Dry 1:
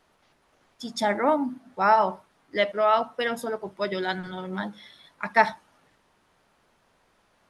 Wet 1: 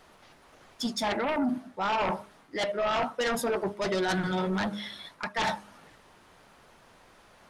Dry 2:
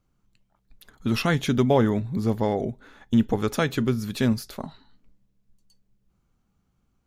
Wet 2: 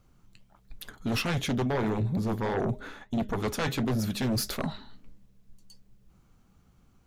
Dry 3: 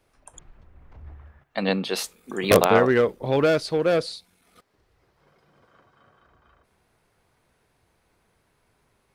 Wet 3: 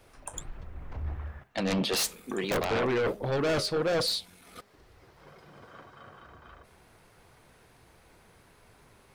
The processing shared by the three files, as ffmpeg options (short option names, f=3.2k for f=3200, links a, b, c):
-af "flanger=delay=1.5:depth=9.2:regen=-67:speed=1.5:shape=sinusoidal,areverse,acompressor=threshold=-34dB:ratio=5,areverse,aeval=exprs='0.0668*sin(PI/2*2.82*val(0)/0.0668)':c=same,bandreject=f=205.5:t=h:w=4,bandreject=f=411:t=h:w=4,bandreject=f=616.5:t=h:w=4"